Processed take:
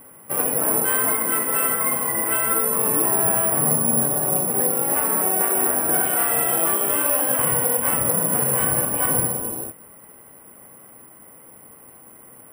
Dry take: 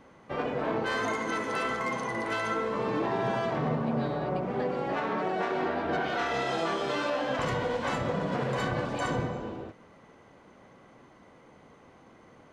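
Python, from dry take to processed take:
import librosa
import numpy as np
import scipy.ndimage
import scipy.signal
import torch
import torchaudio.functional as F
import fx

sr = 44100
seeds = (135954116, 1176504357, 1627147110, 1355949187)

y = scipy.signal.sosfilt(scipy.signal.ellip(4, 1.0, 70, 3000.0, 'lowpass', fs=sr, output='sos'), x)
y = (np.kron(scipy.signal.resample_poly(y, 1, 4), np.eye(4)[0]) * 4)[:len(y)]
y = y * 10.0 ** (4.0 / 20.0)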